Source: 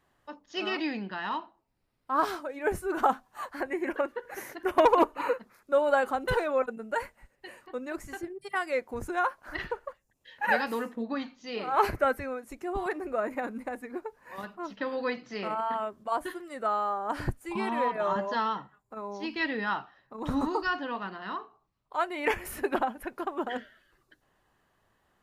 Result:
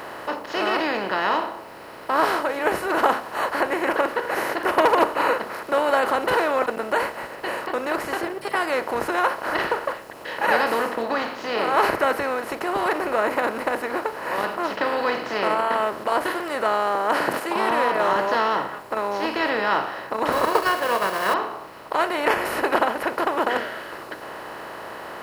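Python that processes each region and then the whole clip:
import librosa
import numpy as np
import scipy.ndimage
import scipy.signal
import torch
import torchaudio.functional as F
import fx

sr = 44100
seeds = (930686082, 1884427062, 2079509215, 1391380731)

y = fx.chain(x, sr, fx.highpass(hz=180.0, slope=24),
    fx.sustainer(db_per_s=120.0), at=(16.95, 17.71))
y = fx.chain(y, sr, fx.crossing_spikes(level_db=-36.0),
    fx.transient(attack_db=10, sustain_db=-7),
    fx.comb(ms=1.8, depth=0.92), at=(20.32, 21.34))
y = fx.bin_compress(y, sr, power=0.4)
y = fx.highpass(y, sr, hz=230.0, slope=6)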